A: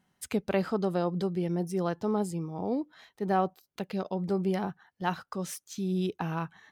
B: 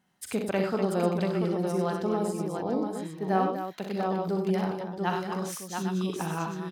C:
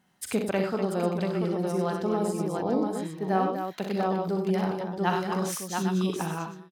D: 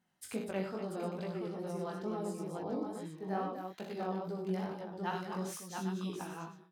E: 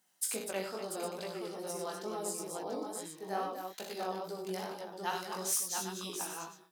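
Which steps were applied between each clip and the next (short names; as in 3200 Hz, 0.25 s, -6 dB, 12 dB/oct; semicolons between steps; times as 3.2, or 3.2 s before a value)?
low shelf 90 Hz -10.5 dB; tapped delay 42/63/97/246/687/808 ms -8.5/-7/-7/-8.5/-5/-9.5 dB
ending faded out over 0.65 s; vocal rider within 3 dB 0.5 s; gain +1.5 dB
chorus 2.3 Hz, delay 17 ms, depth 4.8 ms; gain -8 dB
tone controls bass -15 dB, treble +14 dB; gain +2 dB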